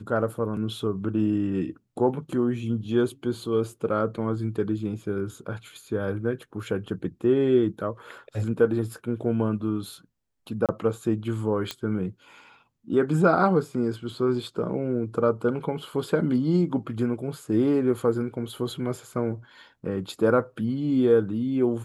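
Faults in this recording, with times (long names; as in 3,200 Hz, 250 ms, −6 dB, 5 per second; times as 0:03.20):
0:10.66–0:10.69: drop-out 27 ms
0:11.71: click −14 dBFS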